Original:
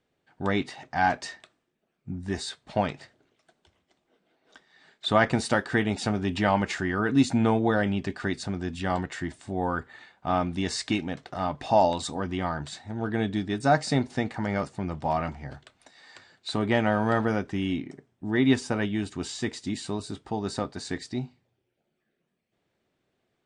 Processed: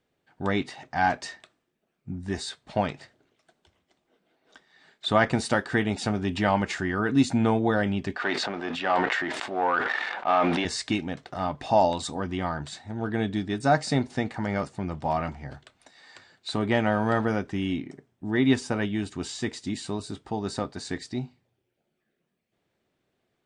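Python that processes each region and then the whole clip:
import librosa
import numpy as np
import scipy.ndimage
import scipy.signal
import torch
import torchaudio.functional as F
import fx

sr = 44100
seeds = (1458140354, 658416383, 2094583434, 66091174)

y = fx.chain(x, sr, fx.leveller(passes=2),
    fx.bandpass_edges(low_hz=490.0, high_hz=3100.0),
    fx.sustainer(db_per_s=26.0), at=(8.16, 10.65))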